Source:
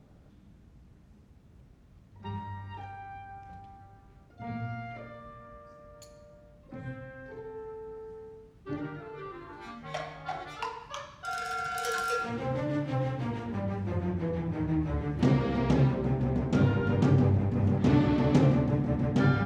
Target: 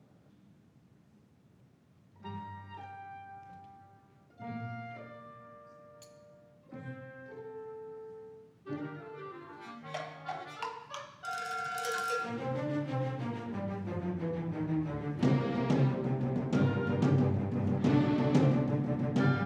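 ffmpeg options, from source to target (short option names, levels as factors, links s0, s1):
-af "highpass=f=110:w=0.5412,highpass=f=110:w=1.3066,volume=0.708"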